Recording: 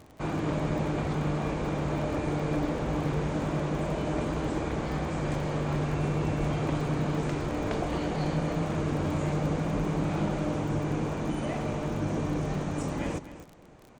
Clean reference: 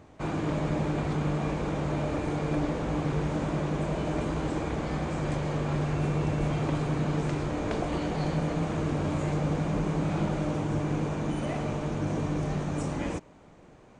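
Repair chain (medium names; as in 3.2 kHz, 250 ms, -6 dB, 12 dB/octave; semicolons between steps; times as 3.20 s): de-click; inverse comb 253 ms -13.5 dB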